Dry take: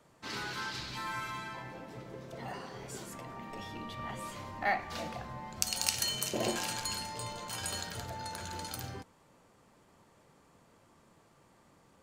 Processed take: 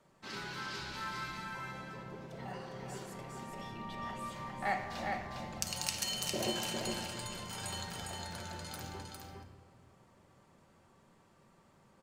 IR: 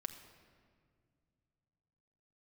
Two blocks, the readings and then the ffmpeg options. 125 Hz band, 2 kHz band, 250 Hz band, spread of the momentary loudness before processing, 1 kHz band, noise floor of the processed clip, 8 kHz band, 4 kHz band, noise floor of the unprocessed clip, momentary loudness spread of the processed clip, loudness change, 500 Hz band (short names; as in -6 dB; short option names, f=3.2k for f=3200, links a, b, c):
-1.0 dB, -2.5 dB, 0.0 dB, 13 LU, -2.0 dB, -66 dBFS, -4.0 dB, -2.0 dB, -64 dBFS, 12 LU, -2.5 dB, -1.5 dB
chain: -filter_complex "[0:a]highshelf=f=7.5k:g=-4,aecho=1:1:406:0.631[a];[1:a]atrim=start_sample=2205[b];[a][b]afir=irnorm=-1:irlink=0,volume=-1dB"